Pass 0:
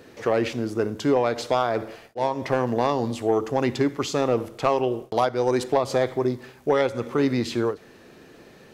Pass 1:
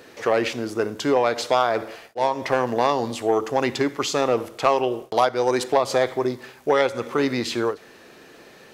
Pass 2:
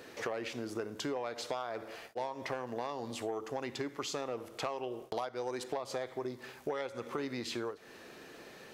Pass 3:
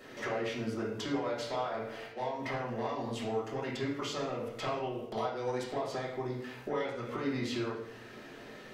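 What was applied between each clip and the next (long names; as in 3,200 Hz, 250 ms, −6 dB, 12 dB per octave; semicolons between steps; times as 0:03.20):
low-shelf EQ 330 Hz −11 dB; level +5 dB
downward compressor 5 to 1, threshold −31 dBFS, peak gain reduction 16 dB; level −4.5 dB
convolution reverb RT60 0.60 s, pre-delay 4 ms, DRR −6.5 dB; level −6 dB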